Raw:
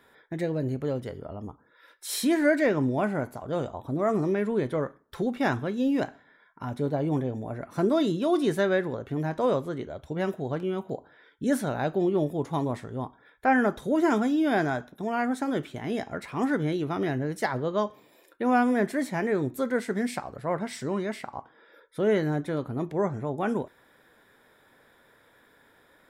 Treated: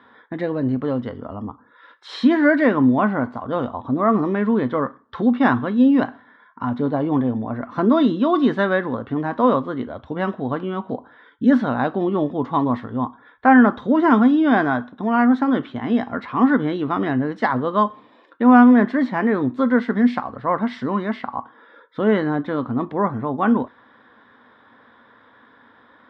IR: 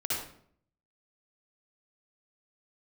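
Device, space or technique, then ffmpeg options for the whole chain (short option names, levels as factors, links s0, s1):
guitar cabinet: -af "highpass=95,equalizer=f=160:t=q:w=4:g=-9,equalizer=f=240:t=q:w=4:g=8,equalizer=f=380:t=q:w=4:g=-7,equalizer=f=610:t=q:w=4:g=-4,equalizer=f=1100:t=q:w=4:g=8,equalizer=f=2400:t=q:w=4:g=-8,lowpass=f=3500:w=0.5412,lowpass=f=3500:w=1.3066,volume=2.51"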